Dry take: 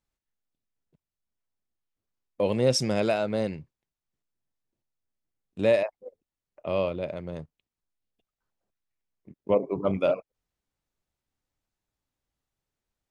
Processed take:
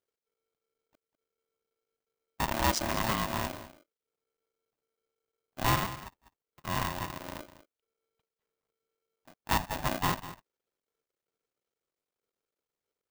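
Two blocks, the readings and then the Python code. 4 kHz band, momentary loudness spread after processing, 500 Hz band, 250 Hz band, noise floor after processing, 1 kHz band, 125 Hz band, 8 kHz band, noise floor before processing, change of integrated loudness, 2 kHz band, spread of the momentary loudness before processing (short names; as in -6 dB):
+0.5 dB, 17 LU, -14.5 dB, -6.0 dB, under -85 dBFS, +6.0 dB, -1.5 dB, +2.0 dB, under -85 dBFS, -4.5 dB, +3.5 dB, 15 LU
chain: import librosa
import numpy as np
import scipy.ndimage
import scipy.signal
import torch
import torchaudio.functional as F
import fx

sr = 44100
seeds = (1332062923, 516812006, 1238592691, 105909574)

p1 = fx.cycle_switch(x, sr, every=3, mode='muted')
p2 = p1 + fx.echo_single(p1, sr, ms=199, db=-14.5, dry=0)
p3 = p2 * np.sign(np.sin(2.0 * np.pi * 450.0 * np.arange(len(p2)) / sr))
y = p3 * 10.0 ** (-4.0 / 20.0)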